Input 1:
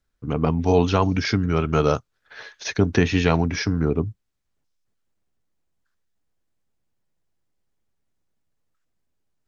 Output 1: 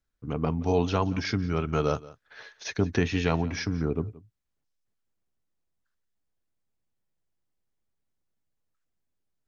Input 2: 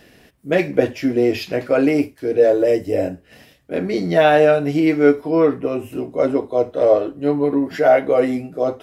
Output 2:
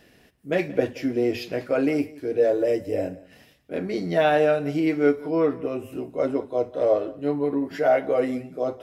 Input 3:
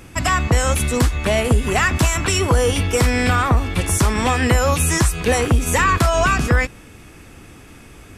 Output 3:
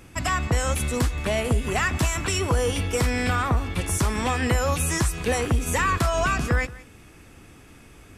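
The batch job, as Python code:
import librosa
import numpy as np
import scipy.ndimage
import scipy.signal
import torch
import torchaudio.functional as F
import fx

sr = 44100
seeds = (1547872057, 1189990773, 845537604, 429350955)

y = x + 10.0 ** (-20.0 / 20.0) * np.pad(x, (int(175 * sr / 1000.0), 0))[:len(x)]
y = F.gain(torch.from_numpy(y), -6.5).numpy()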